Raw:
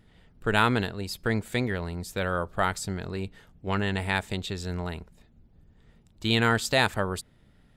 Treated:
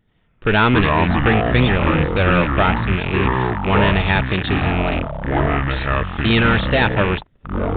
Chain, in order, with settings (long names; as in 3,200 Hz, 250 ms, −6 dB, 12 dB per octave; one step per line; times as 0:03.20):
loose part that buzzes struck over −39 dBFS, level −25 dBFS
0:06.41–0:06.82: hard clipping −23.5 dBFS, distortion −12 dB
leveller curve on the samples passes 3
delay with pitch and tempo change per echo 82 ms, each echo −6 semitones, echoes 3
downsampling to 8,000 Hz